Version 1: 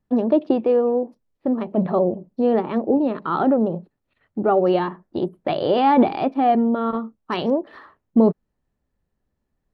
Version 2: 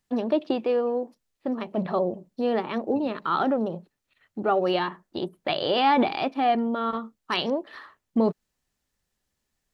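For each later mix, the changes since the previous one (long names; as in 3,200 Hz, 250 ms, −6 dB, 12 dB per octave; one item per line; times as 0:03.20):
second voice +10.5 dB
master: add tilt shelving filter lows −8 dB, about 1,400 Hz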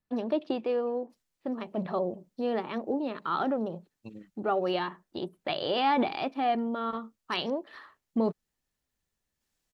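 first voice −5.0 dB
second voice: entry +1.10 s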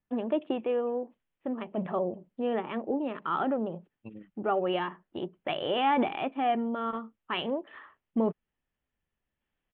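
master: add Butterworth low-pass 3,300 Hz 72 dB per octave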